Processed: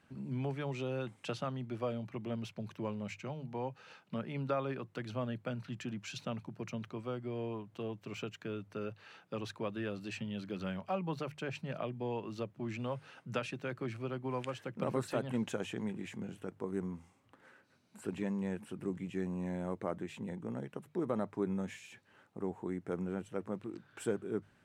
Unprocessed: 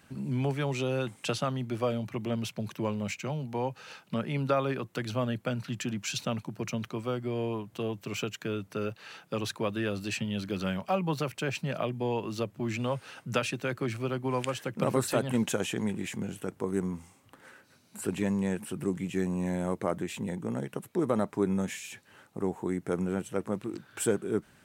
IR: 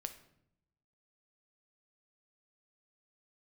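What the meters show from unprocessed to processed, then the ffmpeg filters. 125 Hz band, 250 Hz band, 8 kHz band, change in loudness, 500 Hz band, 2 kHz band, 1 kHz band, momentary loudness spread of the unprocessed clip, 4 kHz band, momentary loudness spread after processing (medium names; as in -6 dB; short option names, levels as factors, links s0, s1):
-7.5 dB, -7.0 dB, -15.0 dB, -7.5 dB, -7.0 dB, -8.5 dB, -7.5 dB, 7 LU, -10.5 dB, 7 LU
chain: -af "aemphasis=mode=reproduction:type=50kf,bandreject=f=50:t=h:w=6,bandreject=f=100:t=h:w=6,bandreject=f=150:t=h:w=6,volume=0.447"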